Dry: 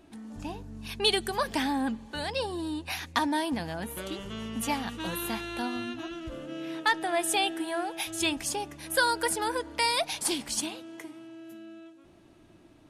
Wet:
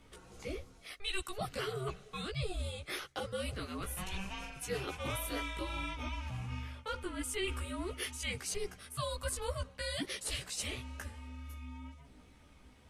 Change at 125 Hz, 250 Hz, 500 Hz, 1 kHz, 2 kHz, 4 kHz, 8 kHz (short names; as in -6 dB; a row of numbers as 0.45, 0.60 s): +2.5, -12.0, -7.5, -13.0, -10.0, -9.5, -8.0 dB